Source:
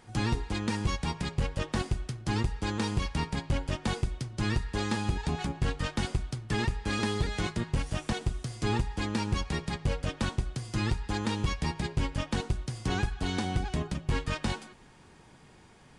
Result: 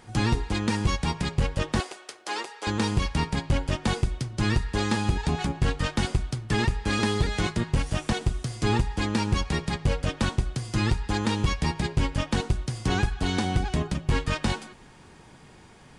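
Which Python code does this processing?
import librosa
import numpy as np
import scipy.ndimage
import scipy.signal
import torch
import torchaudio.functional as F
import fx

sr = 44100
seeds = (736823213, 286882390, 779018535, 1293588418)

y = fx.highpass(x, sr, hz=440.0, slope=24, at=(1.8, 2.67))
y = y * 10.0 ** (5.0 / 20.0)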